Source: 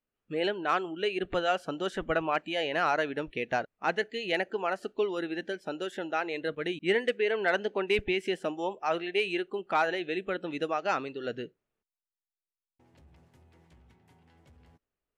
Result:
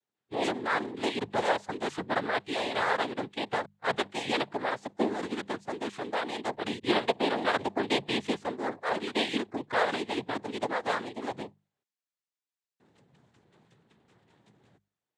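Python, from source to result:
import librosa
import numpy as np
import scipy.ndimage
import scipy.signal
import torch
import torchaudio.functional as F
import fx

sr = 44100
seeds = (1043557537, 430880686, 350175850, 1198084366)

y = fx.noise_vocoder(x, sr, seeds[0], bands=6)
y = fx.hum_notches(y, sr, base_hz=50, count=4)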